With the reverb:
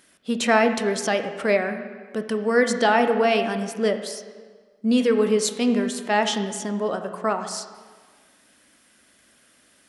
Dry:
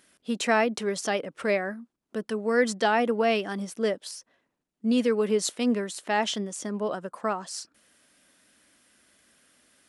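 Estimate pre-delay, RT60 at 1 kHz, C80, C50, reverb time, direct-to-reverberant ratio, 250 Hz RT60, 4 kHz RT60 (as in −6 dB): 17 ms, 1.6 s, 10.0 dB, 9.0 dB, 1.6 s, 7.0 dB, 1.5 s, 1.2 s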